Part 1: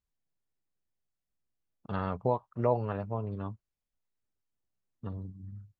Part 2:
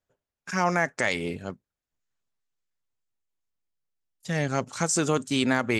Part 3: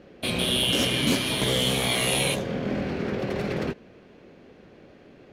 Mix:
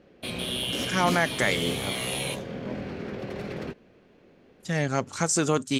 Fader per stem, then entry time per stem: −17.0, +0.5, −6.5 decibels; 0.00, 0.40, 0.00 seconds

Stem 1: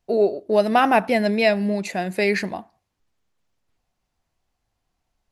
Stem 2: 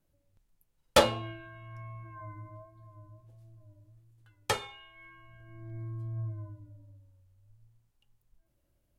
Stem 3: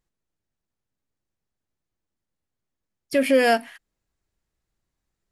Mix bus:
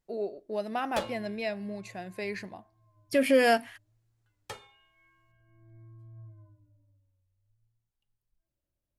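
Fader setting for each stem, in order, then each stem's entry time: −15.0, −12.5, −4.0 decibels; 0.00, 0.00, 0.00 seconds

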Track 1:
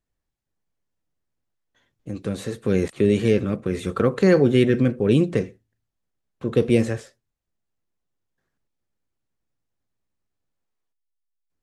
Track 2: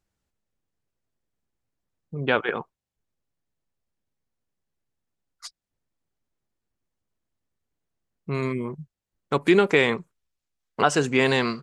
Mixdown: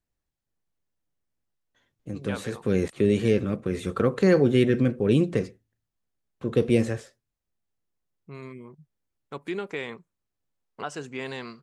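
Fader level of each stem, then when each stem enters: −3.0, −14.0 decibels; 0.00, 0.00 seconds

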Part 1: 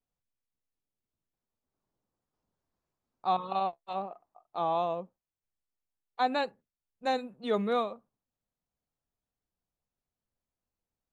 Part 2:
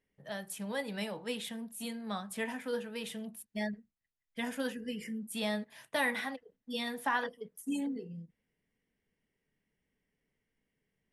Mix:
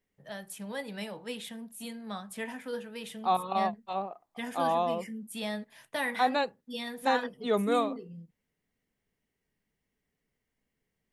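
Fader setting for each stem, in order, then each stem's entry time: +1.5, −1.0 decibels; 0.00, 0.00 seconds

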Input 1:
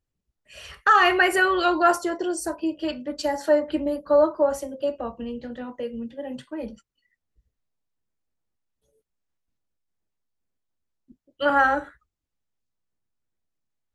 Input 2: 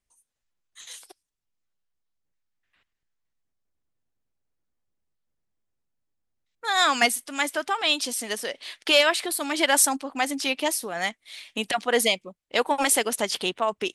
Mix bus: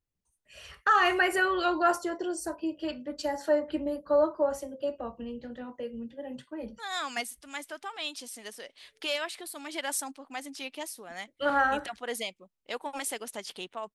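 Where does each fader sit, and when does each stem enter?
−6.0, −13.0 decibels; 0.00, 0.15 seconds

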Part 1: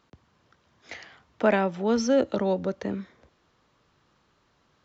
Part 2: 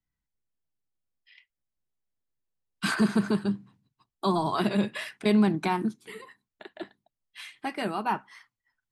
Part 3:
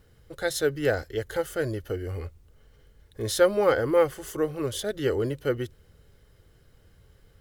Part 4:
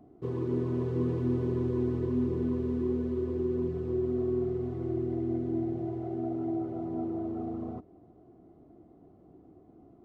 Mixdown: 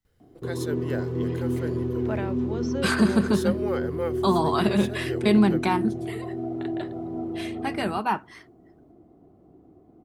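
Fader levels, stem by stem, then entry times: −10.5, +3.0, −9.0, +2.0 decibels; 0.65, 0.00, 0.05, 0.20 seconds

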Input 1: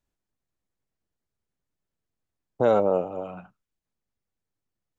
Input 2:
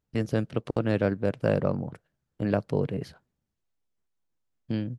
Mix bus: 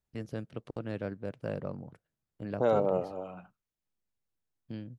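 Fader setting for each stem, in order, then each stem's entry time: −6.0, −11.5 decibels; 0.00, 0.00 seconds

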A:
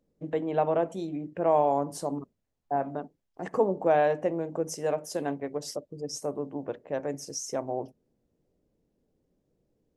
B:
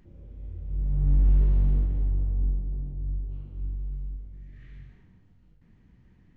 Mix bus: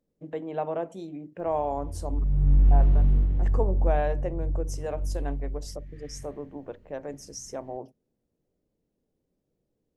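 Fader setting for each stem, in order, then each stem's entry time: −4.5, +2.0 decibels; 0.00, 1.40 seconds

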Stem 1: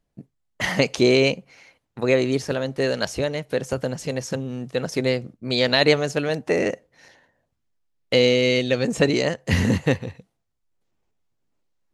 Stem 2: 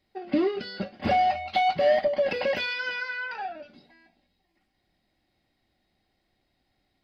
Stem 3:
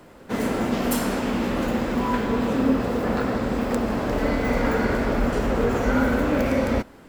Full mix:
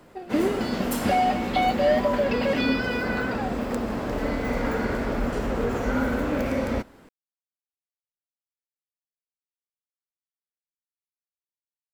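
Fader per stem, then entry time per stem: muted, 0.0 dB, −4.0 dB; muted, 0.00 s, 0.00 s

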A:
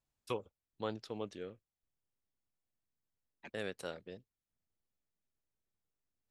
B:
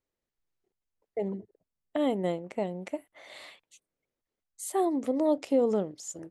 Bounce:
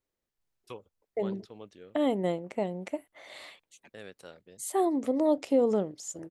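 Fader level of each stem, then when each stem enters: −5.5, +0.5 decibels; 0.40, 0.00 seconds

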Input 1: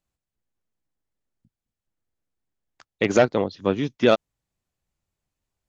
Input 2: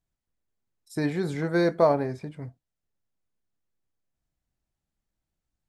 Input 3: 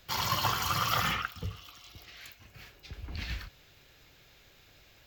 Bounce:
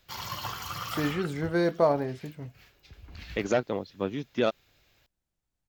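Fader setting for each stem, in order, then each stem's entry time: −8.5, −2.5, −6.5 decibels; 0.35, 0.00, 0.00 seconds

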